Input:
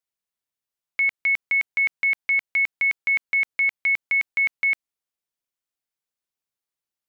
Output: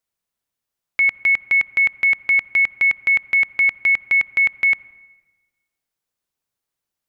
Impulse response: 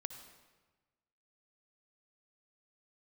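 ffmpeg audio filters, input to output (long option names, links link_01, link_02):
-filter_complex "[0:a]asplit=2[link_01][link_02];[1:a]atrim=start_sample=2205,lowpass=2100,lowshelf=frequency=250:gain=8.5[link_03];[link_02][link_03]afir=irnorm=-1:irlink=0,volume=-7.5dB[link_04];[link_01][link_04]amix=inputs=2:normalize=0,volume=5dB"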